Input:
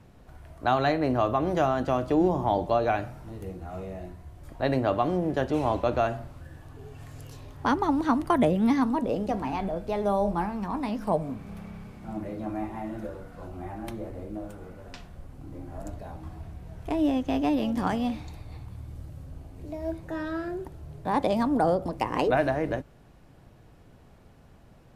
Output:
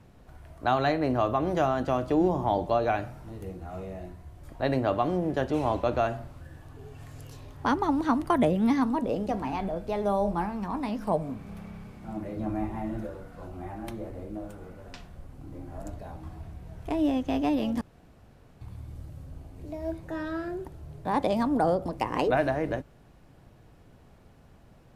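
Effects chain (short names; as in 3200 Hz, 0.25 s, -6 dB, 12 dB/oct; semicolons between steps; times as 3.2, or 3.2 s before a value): 12.36–13.03 low shelf 210 Hz +8 dB; 17.81–18.61 room tone; gain -1 dB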